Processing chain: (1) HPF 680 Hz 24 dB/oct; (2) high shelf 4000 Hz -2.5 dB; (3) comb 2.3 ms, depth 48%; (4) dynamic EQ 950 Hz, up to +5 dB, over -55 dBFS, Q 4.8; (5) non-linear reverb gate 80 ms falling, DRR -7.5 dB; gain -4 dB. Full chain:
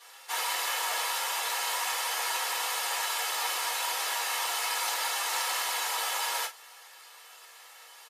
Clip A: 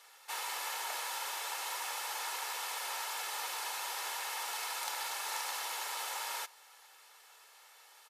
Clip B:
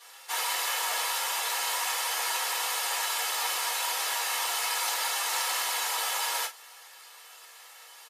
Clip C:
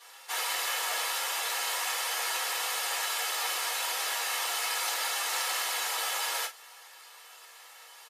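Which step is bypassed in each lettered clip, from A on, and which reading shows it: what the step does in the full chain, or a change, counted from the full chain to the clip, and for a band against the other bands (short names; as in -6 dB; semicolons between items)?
5, crest factor change +3.0 dB; 2, 8 kHz band +1.5 dB; 4, 1 kHz band -2.5 dB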